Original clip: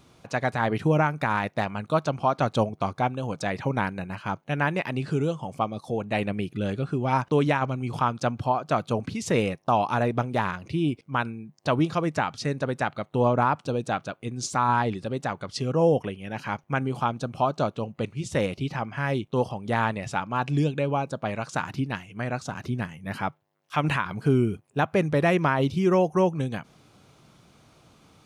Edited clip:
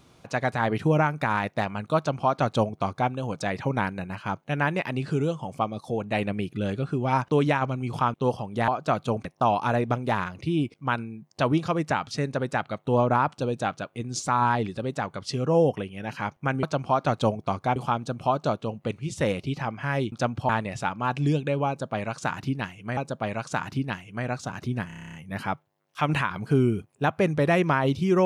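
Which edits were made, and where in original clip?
0:01.97–0:03.10: duplicate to 0:16.90
0:08.14–0:08.51: swap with 0:19.26–0:19.80
0:09.08–0:09.52: remove
0:20.99–0:22.28: repeat, 2 plays
0:22.89: stutter 0.03 s, 10 plays

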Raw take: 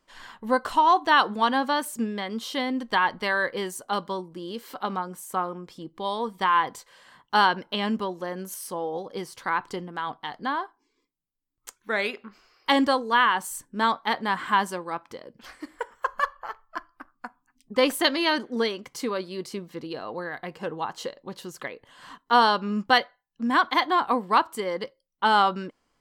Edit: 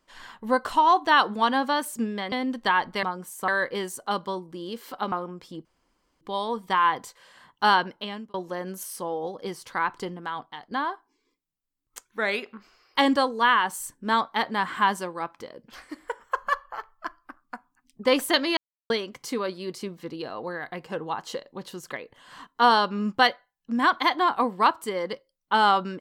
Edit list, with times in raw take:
0:02.32–0:02.59: remove
0:04.94–0:05.39: move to 0:03.30
0:05.92: splice in room tone 0.56 s
0:07.50–0:08.05: fade out linear
0:09.90–0:10.42: fade out, to −9.5 dB
0:18.28–0:18.61: silence

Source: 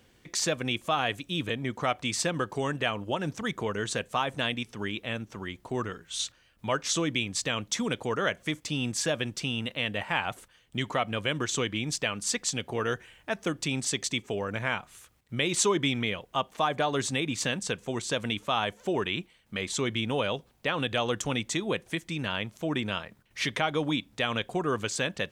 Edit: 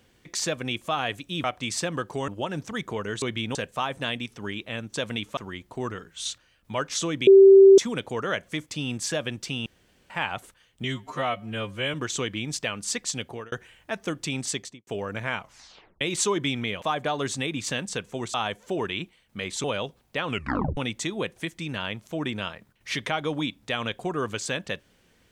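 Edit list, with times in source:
0:01.44–0:01.86: remove
0:02.70–0:02.98: remove
0:07.21–0:07.72: beep over 389 Hz −8 dBFS
0:09.60–0:10.04: fill with room tone
0:10.78–0:11.33: time-stretch 2×
0:12.64–0:12.91: fade out
0:13.90–0:14.26: fade out and dull
0:14.77: tape stop 0.63 s
0:16.21–0:16.56: remove
0:18.08–0:18.51: move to 0:05.31
0:19.81–0:20.14: move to 0:03.92
0:20.78: tape stop 0.49 s

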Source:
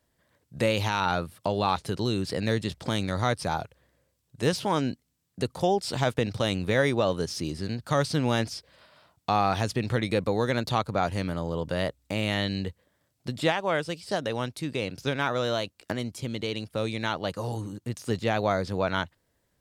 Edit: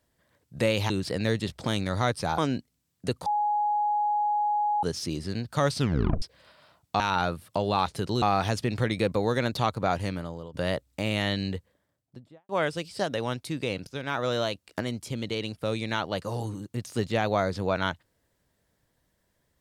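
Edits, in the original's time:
0:00.90–0:02.12: move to 0:09.34
0:03.60–0:04.72: remove
0:05.60–0:07.17: beep over 834 Hz −22.5 dBFS
0:08.11: tape stop 0.45 s
0:11.11–0:11.66: fade out, to −16.5 dB
0:12.59–0:13.61: fade out and dull
0:14.99–0:15.40: fade in, from −12 dB

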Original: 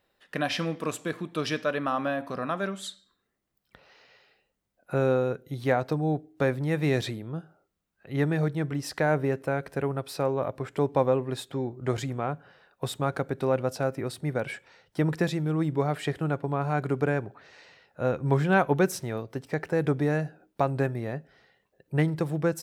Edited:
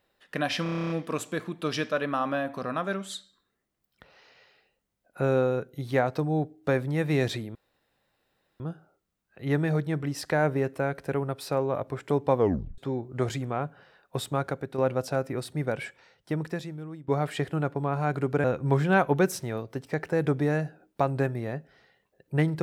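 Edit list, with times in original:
0:00.63: stutter 0.03 s, 10 plays
0:07.28: splice in room tone 1.05 s
0:11.06: tape stop 0.40 s
0:13.03–0:13.46: fade out, to −6.5 dB
0:14.44–0:15.76: fade out, to −20.5 dB
0:17.12–0:18.04: remove

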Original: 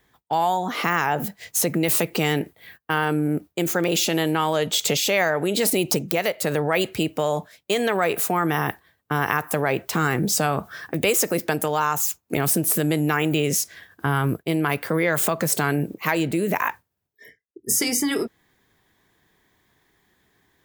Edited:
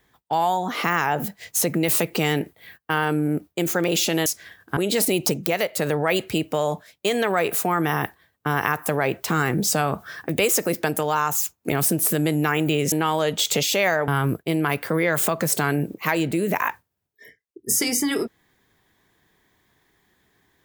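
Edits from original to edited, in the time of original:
0:04.26–0:05.42: swap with 0:13.57–0:14.08

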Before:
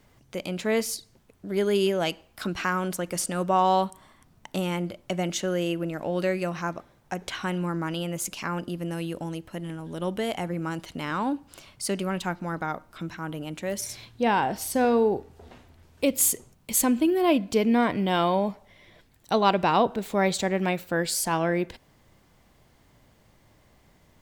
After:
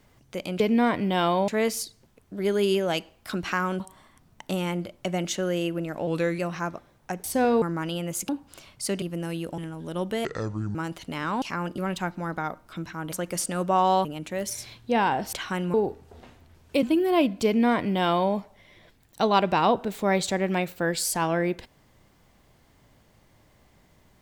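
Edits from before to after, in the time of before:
0:02.92–0:03.85: move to 0:13.36
0:06.12–0:06.41: play speed 91%
0:07.26–0:07.67: swap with 0:14.64–0:15.02
0:08.34–0:08.70: swap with 0:11.29–0:12.02
0:09.26–0:09.64: remove
0:10.31–0:10.62: play speed 62%
0:16.11–0:16.94: remove
0:17.56–0:18.44: duplicate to 0:00.60

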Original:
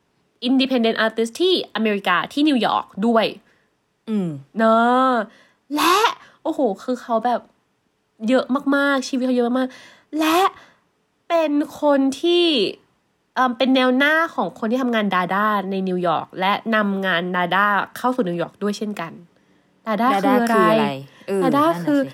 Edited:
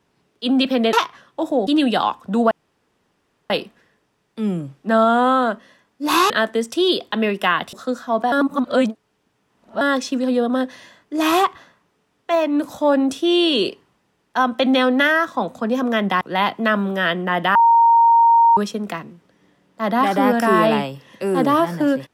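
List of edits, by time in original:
0:00.93–0:02.36: swap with 0:06.00–0:06.74
0:03.20: splice in room tone 0.99 s
0:07.33–0:08.82: reverse
0:15.22–0:16.28: remove
0:17.62–0:18.64: beep over 927 Hz −9 dBFS

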